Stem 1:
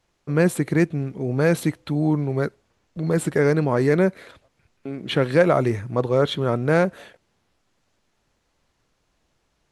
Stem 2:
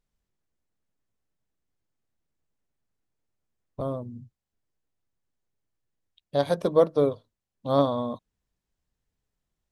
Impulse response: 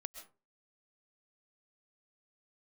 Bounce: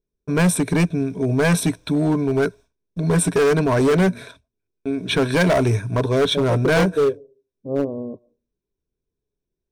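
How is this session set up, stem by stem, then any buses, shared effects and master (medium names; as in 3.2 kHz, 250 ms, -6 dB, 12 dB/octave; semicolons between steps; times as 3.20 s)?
+2.5 dB, 0.00 s, no send, expander -40 dBFS; rippled EQ curve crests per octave 1.6, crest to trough 12 dB
-4.0 dB, 0.00 s, send -13 dB, resonant low-pass 400 Hz, resonance Q 4.9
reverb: on, RT60 0.35 s, pre-delay 90 ms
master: band-stop 2.1 kHz, Q 16; hard clipper -13.5 dBFS, distortion -10 dB; tone controls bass +1 dB, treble +6 dB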